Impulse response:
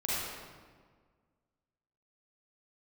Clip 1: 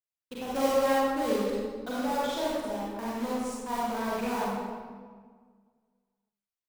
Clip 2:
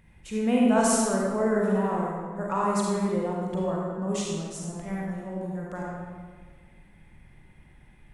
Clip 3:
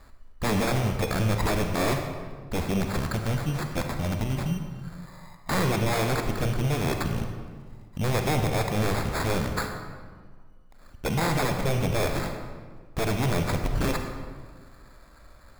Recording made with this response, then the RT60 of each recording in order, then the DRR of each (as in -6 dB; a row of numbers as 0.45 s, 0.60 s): 1; 1.6 s, 1.6 s, 1.6 s; -8.5 dB, -3.5 dB, 4.5 dB